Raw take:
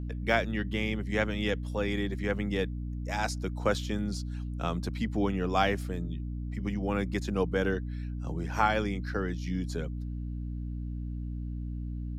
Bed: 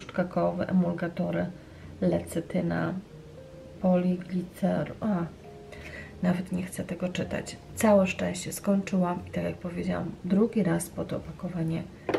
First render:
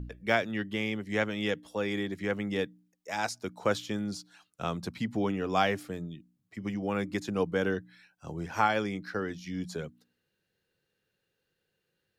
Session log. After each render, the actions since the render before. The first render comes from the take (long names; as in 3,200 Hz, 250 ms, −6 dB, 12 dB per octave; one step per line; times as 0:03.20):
hum removal 60 Hz, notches 5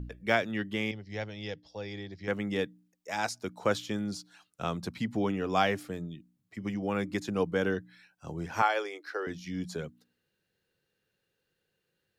0:00.91–0:02.28: drawn EQ curve 120 Hz 0 dB, 230 Hz −12 dB, 800 Hz −5 dB, 1,200 Hz −15 dB, 1,900 Hz −9 dB, 3,200 Hz −8 dB, 5,000 Hz +5 dB, 9,100 Hz −29 dB
0:08.62–0:09.27: elliptic high-pass filter 360 Hz, stop band 60 dB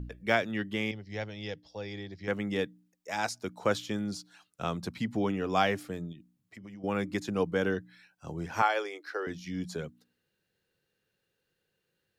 0:06.12–0:06.84: downward compressor 4 to 1, threshold −45 dBFS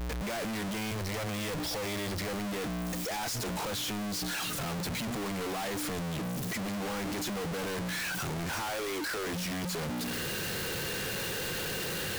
sign of each sample alone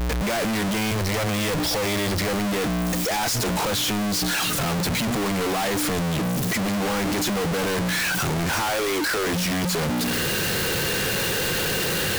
level +10.5 dB